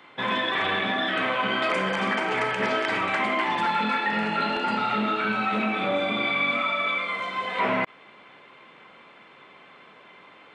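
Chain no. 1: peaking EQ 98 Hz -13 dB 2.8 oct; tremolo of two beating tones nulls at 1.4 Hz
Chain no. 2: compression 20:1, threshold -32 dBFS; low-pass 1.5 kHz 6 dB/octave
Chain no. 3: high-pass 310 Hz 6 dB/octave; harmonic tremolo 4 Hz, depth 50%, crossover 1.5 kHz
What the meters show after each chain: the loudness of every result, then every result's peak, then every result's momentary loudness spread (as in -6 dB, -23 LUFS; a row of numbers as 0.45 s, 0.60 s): -28.5 LUFS, -37.5 LUFS, -27.5 LUFS; -12.5 dBFS, -25.0 dBFS, -14.5 dBFS; 6 LU, 15 LU, 2 LU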